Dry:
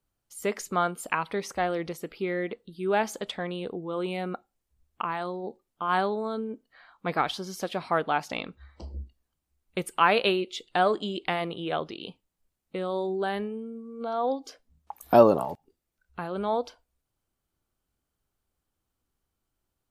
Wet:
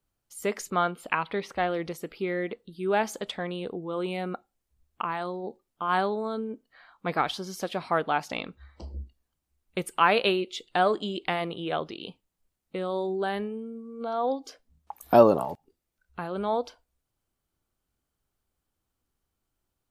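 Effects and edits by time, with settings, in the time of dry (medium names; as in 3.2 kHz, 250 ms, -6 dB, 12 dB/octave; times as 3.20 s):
0.70–1.75 s: resonant high shelf 4.9 kHz -9.5 dB, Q 1.5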